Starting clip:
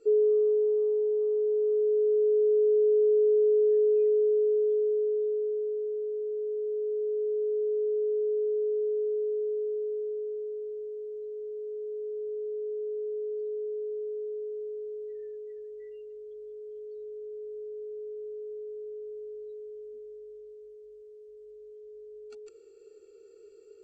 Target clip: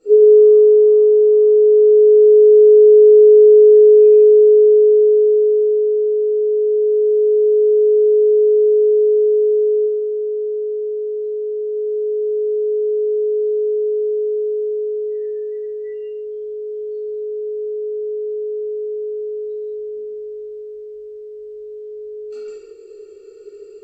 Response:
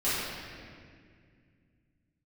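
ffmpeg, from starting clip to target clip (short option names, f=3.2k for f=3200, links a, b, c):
-filter_complex "[0:a]asettb=1/sr,asplit=3[a][b][c];[a]atrim=end=9.834[d];[b]atrim=start=9.83:end=11.71,asetpts=PTS-STARTPTS,afade=t=in:d=0.004:c=qsin,afade=t=out:st=1.876:d=0.004:c=qsin,acompressor=threshold=-35dB:ratio=6[e];[c]atrim=start=11.706[f];[d][e]acrossfade=d=0.004:c1=hsin:c2=qsin[g];[g][f]acrossfade=d=0.004:c1=qsin:c2=hsin[h];[1:a]atrim=start_sample=2205,afade=t=out:st=0.29:d=0.01,atrim=end_sample=13230[i];[h][i]afir=irnorm=-1:irlink=0,volume=2dB"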